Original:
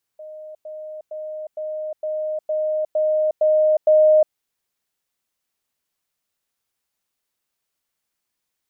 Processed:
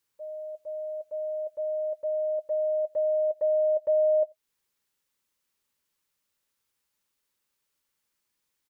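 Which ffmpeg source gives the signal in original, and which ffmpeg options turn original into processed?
-f lavfi -i "aevalsrc='pow(10,(-34+3*floor(t/0.46))/20)*sin(2*PI*618*t)*clip(min(mod(t,0.46),0.36-mod(t,0.46))/0.005,0,1)':duration=4.14:sample_rate=44100"
-filter_complex "[0:a]acompressor=threshold=-28dB:ratio=2,asuperstop=centerf=700:order=12:qfactor=4.8,asplit=2[link_01][link_02];[link_02]adelay=87.46,volume=-29dB,highshelf=frequency=4000:gain=-1.97[link_03];[link_01][link_03]amix=inputs=2:normalize=0"

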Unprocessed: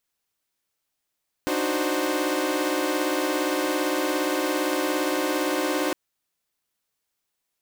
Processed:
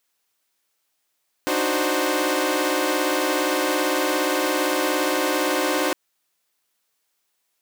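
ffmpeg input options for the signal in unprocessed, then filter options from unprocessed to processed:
-f lavfi -i "aevalsrc='0.0501*((2*mod(293.66*t,1)-1)+(2*mod(311.13*t,1)-1)+(2*mod(369.99*t,1)-1)+(2*mod(523.25*t,1)-1))':duration=4.46:sample_rate=44100"
-filter_complex "[0:a]asplit=2[link_01][link_02];[link_02]alimiter=limit=-21.5dB:level=0:latency=1:release=148,volume=2dB[link_03];[link_01][link_03]amix=inputs=2:normalize=0,lowshelf=frequency=200:gain=-12"

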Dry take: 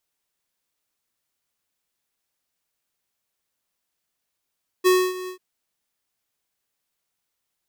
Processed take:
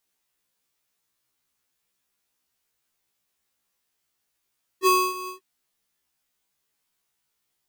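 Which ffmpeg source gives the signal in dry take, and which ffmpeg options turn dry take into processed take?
-f lavfi -i "aevalsrc='0.178*(2*lt(mod(368*t,1),0.5)-1)':duration=0.54:sample_rate=44100,afade=type=in:duration=0.028,afade=type=out:start_time=0.028:duration=0.264:silence=0.141,afade=type=out:start_time=0.44:duration=0.1"
-af "equalizer=frequency=590:width=4.5:gain=-3.5,acontrast=20,afftfilt=real='re*1.73*eq(mod(b,3),0)':imag='im*1.73*eq(mod(b,3),0)':win_size=2048:overlap=0.75"

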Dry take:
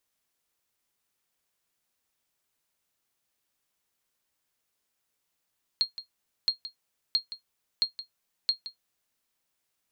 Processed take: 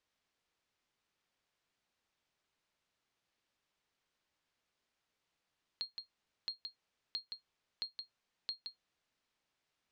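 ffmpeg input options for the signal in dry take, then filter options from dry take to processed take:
-f lavfi -i "aevalsrc='0.168*(sin(2*PI*4240*mod(t,0.67))*exp(-6.91*mod(t,0.67)/0.12)+0.2*sin(2*PI*4240*max(mod(t,0.67)-0.17,0))*exp(-6.91*max(mod(t,0.67)-0.17,0)/0.12))':duration=3.35:sample_rate=44100"
-af "alimiter=limit=-23.5dB:level=0:latency=1:release=29,acompressor=threshold=-39dB:ratio=3,lowpass=4600"

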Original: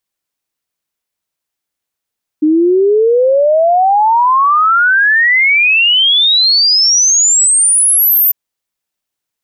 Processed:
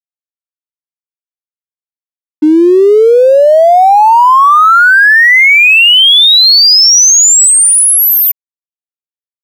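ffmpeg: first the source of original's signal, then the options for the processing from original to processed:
-f lavfi -i "aevalsrc='0.473*clip(min(t,5.9-t)/0.01,0,1)*sin(2*PI*300*5.9/log(14000/300)*(exp(log(14000/300)*t/5.9)-1))':duration=5.9:sample_rate=44100"
-af "dynaudnorm=framelen=340:gausssize=11:maxgain=11.5dB,aeval=exprs='sgn(val(0))*max(abs(val(0))-0.0398,0)':channel_layout=same"

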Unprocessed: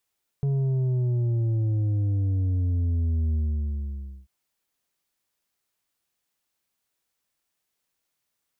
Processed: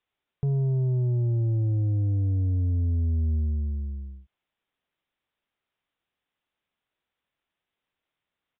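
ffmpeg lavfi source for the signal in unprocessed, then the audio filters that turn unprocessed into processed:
-f lavfi -i "aevalsrc='0.0794*clip((3.84-t)/0.93,0,1)*tanh(2*sin(2*PI*140*3.84/log(65/140)*(exp(log(65/140)*t/3.84)-1)))/tanh(2)':duration=3.84:sample_rate=44100"
-af "aresample=8000,aresample=44100"

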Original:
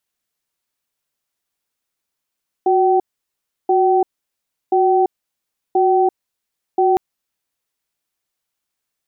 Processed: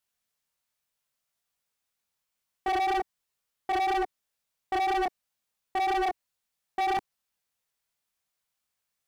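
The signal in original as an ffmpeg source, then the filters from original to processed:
-f lavfi -i "aevalsrc='0.2*(sin(2*PI*368*t)+sin(2*PI*765*t))*clip(min(mod(t,1.03),0.34-mod(t,1.03))/0.005,0,1)':duration=4.31:sample_rate=44100"
-af "equalizer=frequency=330:width_type=o:width=0.56:gain=-8.5,flanger=delay=19:depth=4.5:speed=3,asoftclip=type=hard:threshold=-25dB"

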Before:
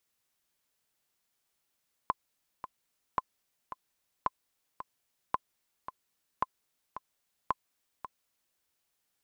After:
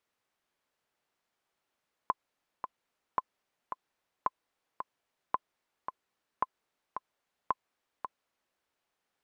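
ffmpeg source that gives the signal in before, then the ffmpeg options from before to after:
-f lavfi -i "aevalsrc='pow(10,(-14-12*gte(mod(t,2*60/111),60/111))/20)*sin(2*PI*1030*mod(t,60/111))*exp(-6.91*mod(t,60/111)/0.03)':duration=6.48:sample_rate=44100"
-filter_complex "[0:a]lowpass=frequency=1200:poles=1,lowshelf=frequency=250:gain=-11,asplit=2[link_01][link_02];[link_02]alimiter=level_in=4dB:limit=-24dB:level=0:latency=1:release=15,volume=-4dB,volume=2dB[link_03];[link_01][link_03]amix=inputs=2:normalize=0"

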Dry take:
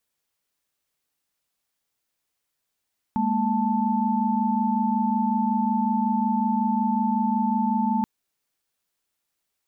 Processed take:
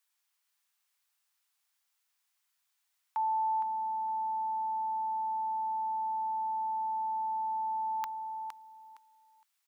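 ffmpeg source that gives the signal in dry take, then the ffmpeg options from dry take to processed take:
-f lavfi -i "aevalsrc='0.0596*(sin(2*PI*207.65*t)+sin(2*PI*233.08*t)+sin(2*PI*880*t))':duration=4.88:sample_rate=44100"
-af "highpass=frequency=840:width=0.5412,highpass=frequency=840:width=1.3066,aecho=1:1:463|926|1389:0.422|0.0886|0.0186"

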